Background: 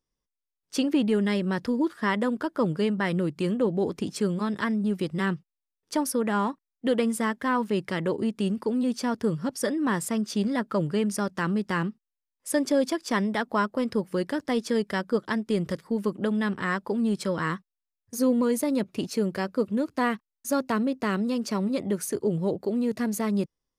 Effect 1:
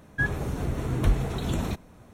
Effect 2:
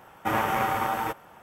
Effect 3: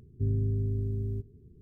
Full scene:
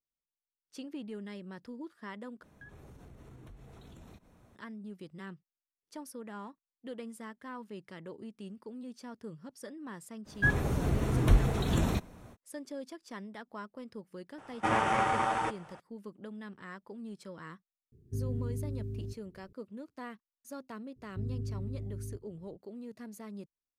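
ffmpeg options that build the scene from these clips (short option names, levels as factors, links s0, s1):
-filter_complex "[1:a]asplit=2[s0][s1];[3:a]asplit=2[s2][s3];[0:a]volume=0.119[s4];[s0]acompressor=threshold=0.01:ratio=6:attack=3.2:release=140:knee=1:detection=peak[s5];[2:a]aresample=22050,aresample=44100[s6];[s2]lowshelf=f=300:g=-5.5[s7];[s4]asplit=2[s8][s9];[s8]atrim=end=2.434[s10];[s5]atrim=end=2.13,asetpts=PTS-STARTPTS,volume=0.316[s11];[s9]atrim=start=4.556[s12];[s1]atrim=end=2.13,asetpts=PTS-STARTPTS,volume=0.944,afade=t=in:d=0.05,afade=t=out:st=2.08:d=0.05,adelay=10240[s13];[s6]atrim=end=1.42,asetpts=PTS-STARTPTS,volume=0.75,afade=t=in:d=0.004:c=hsin,afade=t=out:st=1.416:d=0.004:c=hsin,adelay=14380[s14];[s7]atrim=end=1.61,asetpts=PTS-STARTPTS,volume=0.794,afade=t=in:d=0.004:c=hsin,afade=t=out:st=1.606:d=0.004:c=hsin,adelay=17920[s15];[s3]atrim=end=1.61,asetpts=PTS-STARTPTS,volume=0.376,afade=t=in:d=0.004:c=hsin,afade=t=out:st=1.606:d=0.004:c=hsin,adelay=20960[s16];[s10][s11]acrossfade=d=0.004:c1=hsin:c2=hsin[s17];[s17][s12]acrossfade=d=0.004:c1=hsin:c2=hsin[s18];[s18][s13][s14][s15][s16]amix=inputs=5:normalize=0"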